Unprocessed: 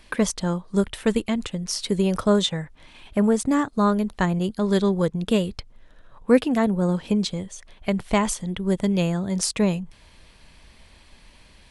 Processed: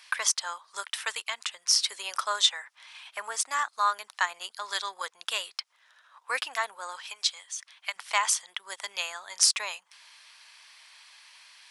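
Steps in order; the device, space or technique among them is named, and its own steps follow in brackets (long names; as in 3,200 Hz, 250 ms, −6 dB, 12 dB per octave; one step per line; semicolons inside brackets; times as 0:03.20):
headphones lying on a table (high-pass filter 1,000 Hz 24 dB per octave; parametric band 5,400 Hz +5 dB 0.49 octaves)
0:07.00–0:07.96: high-pass filter 1,100 Hz 6 dB per octave
level +2 dB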